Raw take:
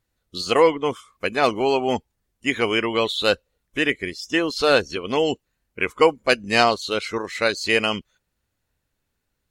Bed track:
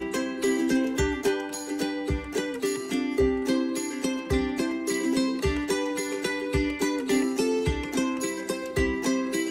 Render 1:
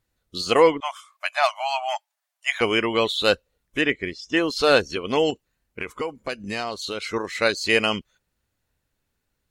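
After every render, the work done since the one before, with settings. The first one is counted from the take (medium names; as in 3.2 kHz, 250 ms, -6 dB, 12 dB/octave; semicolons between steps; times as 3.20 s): 0.80–2.61 s: brick-wall FIR high-pass 580 Hz; 3.81–4.37 s: distance through air 100 m; 5.30–7.11 s: compression 4:1, threshold -26 dBFS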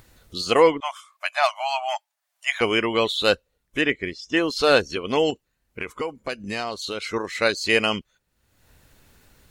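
upward compressor, threshold -37 dBFS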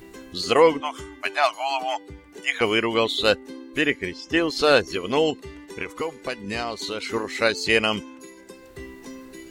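add bed track -14 dB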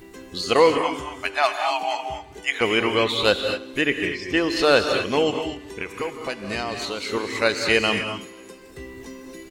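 feedback delay 164 ms, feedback 57%, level -23 dB; gated-style reverb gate 270 ms rising, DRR 5 dB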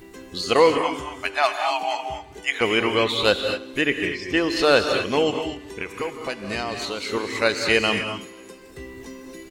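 no audible change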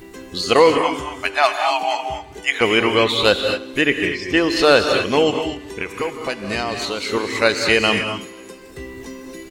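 trim +4.5 dB; peak limiter -2 dBFS, peak gain reduction 2.5 dB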